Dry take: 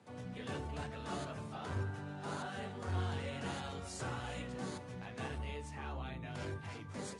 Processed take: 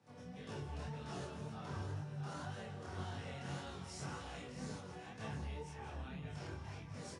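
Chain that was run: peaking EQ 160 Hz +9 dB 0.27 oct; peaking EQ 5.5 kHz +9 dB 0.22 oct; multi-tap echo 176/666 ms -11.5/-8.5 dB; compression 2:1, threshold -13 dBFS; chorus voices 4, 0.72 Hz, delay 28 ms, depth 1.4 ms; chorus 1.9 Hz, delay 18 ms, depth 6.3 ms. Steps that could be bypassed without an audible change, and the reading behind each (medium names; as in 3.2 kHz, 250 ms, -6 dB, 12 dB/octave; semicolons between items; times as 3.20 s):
compression, threshold -13 dBFS: peak at its input -25.5 dBFS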